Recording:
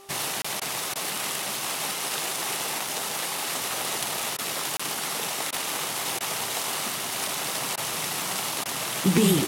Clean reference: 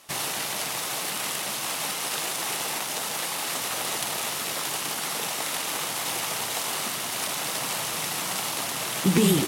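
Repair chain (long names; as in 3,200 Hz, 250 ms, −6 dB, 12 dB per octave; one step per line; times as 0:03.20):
click removal
hum removal 394.6 Hz, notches 3
repair the gap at 0:00.42/0:04.77, 25 ms
repair the gap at 0:00.60/0:00.94/0:04.37/0:05.51/0:06.19/0:07.76/0:08.64, 14 ms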